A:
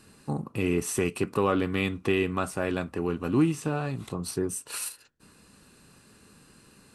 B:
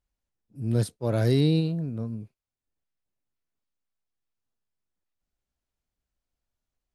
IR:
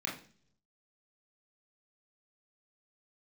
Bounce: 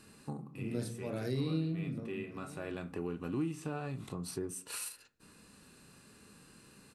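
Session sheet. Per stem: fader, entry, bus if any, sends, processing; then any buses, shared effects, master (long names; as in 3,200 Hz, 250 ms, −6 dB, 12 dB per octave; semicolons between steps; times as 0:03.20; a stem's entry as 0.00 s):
−1.5 dB, 0.00 s, send −17.5 dB, no echo send, harmonic and percussive parts rebalanced percussive −5 dB; automatic ducking −15 dB, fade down 0.30 s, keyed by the second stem
−3.0 dB, 0.00 s, send −3.5 dB, echo send −23.5 dB, shaped tremolo saw up 1 Hz, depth 50%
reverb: on, RT60 0.50 s, pre-delay 23 ms
echo: single-tap delay 1,095 ms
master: downward compressor 2 to 1, threshold −40 dBFS, peak gain reduction 12.5 dB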